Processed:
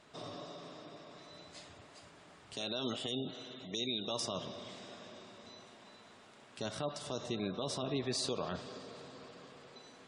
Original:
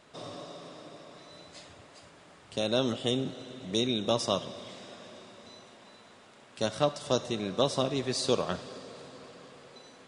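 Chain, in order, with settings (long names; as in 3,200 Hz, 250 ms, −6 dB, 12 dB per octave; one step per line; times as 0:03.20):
notch filter 530 Hz, Q 12
gate on every frequency bin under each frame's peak −30 dB strong
0:02.53–0:04.20: spectral tilt +2 dB per octave
brickwall limiter −23 dBFS, peak gain reduction 11 dB
level −3 dB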